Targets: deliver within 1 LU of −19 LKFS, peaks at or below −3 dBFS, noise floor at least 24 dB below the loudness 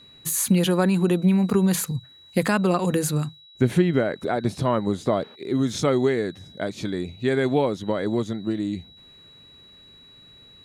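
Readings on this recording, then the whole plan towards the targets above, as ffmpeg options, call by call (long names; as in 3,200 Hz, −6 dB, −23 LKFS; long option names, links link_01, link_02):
interfering tone 3,900 Hz; level of the tone −48 dBFS; integrated loudness −23.5 LKFS; sample peak −8.0 dBFS; target loudness −19.0 LKFS
→ -af "bandreject=frequency=3900:width=30"
-af "volume=4.5dB"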